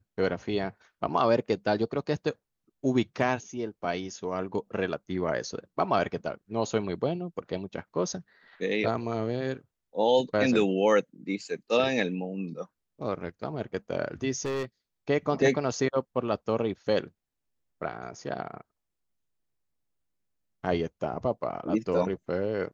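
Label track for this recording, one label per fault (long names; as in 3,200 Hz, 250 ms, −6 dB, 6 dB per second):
14.450000	14.650000	clipping −27.5 dBFS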